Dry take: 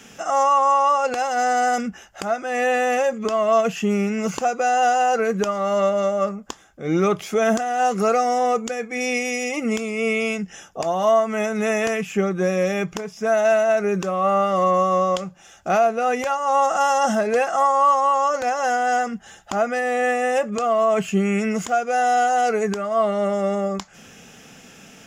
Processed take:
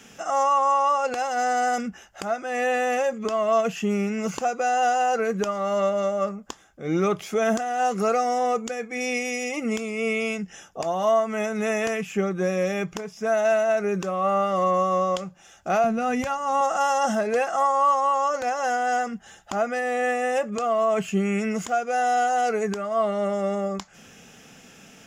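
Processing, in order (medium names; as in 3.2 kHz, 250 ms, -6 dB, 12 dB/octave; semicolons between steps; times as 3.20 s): 15.84–16.61 s: resonant low shelf 260 Hz +13.5 dB, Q 1.5; trim -3.5 dB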